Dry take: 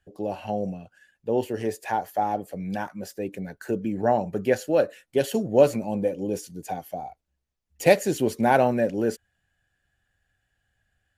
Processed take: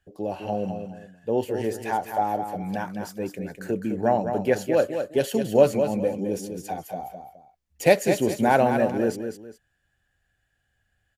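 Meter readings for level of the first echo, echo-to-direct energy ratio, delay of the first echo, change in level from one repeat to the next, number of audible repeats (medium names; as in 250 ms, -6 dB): -7.5 dB, -7.0 dB, 208 ms, -11.0 dB, 2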